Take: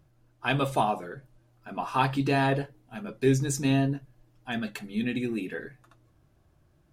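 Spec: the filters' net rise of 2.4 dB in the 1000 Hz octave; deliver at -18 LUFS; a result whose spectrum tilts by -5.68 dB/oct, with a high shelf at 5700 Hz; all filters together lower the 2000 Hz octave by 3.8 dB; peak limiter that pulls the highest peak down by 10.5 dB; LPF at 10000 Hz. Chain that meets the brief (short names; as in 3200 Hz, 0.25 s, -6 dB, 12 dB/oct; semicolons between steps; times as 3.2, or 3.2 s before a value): LPF 10000 Hz; bell 1000 Hz +4.5 dB; bell 2000 Hz -7.5 dB; high shelf 5700 Hz +5 dB; gain +14.5 dB; limiter -6.5 dBFS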